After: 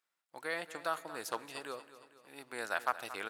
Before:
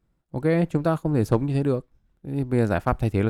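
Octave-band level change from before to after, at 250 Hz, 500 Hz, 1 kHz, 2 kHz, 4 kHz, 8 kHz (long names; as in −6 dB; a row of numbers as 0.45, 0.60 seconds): −28.0 dB, −17.5 dB, −7.0 dB, −3.0 dB, −0.5 dB, can't be measured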